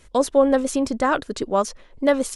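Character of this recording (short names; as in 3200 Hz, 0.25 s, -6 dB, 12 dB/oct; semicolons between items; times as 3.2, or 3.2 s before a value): noise floor -51 dBFS; spectral tilt -4.0 dB/oct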